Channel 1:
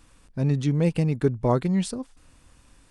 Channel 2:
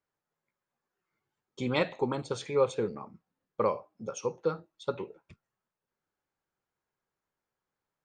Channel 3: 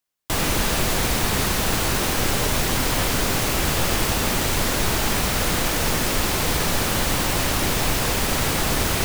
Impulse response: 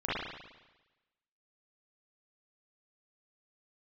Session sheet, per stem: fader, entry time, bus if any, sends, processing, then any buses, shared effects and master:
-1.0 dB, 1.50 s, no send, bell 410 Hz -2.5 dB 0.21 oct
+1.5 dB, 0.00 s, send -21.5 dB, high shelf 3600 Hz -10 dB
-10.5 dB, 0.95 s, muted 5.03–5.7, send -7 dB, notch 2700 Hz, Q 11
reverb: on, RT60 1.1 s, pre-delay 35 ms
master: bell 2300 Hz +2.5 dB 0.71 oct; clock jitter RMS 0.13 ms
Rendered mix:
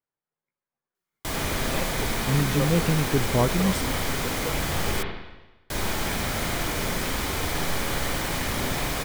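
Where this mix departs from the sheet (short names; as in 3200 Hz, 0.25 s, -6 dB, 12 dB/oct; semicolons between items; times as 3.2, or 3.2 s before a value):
stem 1: entry 1.50 s -> 1.90 s; stem 2 +1.5 dB -> -6.0 dB; master: missing clock jitter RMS 0.13 ms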